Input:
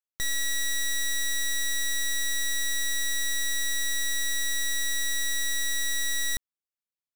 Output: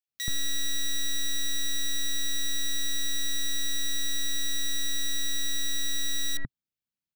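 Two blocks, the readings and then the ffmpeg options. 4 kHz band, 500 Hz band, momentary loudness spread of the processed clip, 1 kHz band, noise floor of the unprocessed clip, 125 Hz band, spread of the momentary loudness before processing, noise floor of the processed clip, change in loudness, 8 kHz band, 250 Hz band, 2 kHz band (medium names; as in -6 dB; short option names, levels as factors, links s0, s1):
+0.5 dB, -3.0 dB, 0 LU, -2.5 dB, under -85 dBFS, no reading, 0 LU, under -85 dBFS, -2.0 dB, -3.5 dB, +6.5 dB, -8.0 dB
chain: -filter_complex "[0:a]equalizer=f=125:t=o:w=1:g=8,equalizer=f=250:t=o:w=1:g=5,equalizer=f=500:t=o:w=1:g=-6,equalizer=f=1000:t=o:w=1:g=-6,equalizer=f=8000:t=o:w=1:g=-7,equalizer=f=16000:t=o:w=1:g=-5,acrossover=split=1800[s0][s1];[s0]adelay=80[s2];[s2][s1]amix=inputs=2:normalize=0,volume=1.41"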